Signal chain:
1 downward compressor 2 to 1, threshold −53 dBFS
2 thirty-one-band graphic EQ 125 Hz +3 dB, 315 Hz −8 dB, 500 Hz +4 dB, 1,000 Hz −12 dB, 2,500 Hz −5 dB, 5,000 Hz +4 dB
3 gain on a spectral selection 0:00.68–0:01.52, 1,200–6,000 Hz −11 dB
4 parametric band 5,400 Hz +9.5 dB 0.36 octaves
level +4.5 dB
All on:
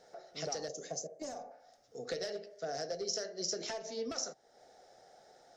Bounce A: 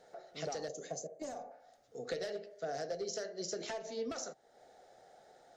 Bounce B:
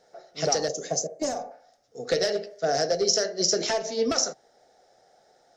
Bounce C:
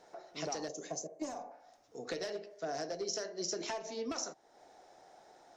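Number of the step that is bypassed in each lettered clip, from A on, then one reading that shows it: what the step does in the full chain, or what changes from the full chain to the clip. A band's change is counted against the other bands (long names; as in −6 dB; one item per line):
4, 4 kHz band −6.0 dB
1, average gain reduction 10.5 dB
2, change in momentary loudness spread +10 LU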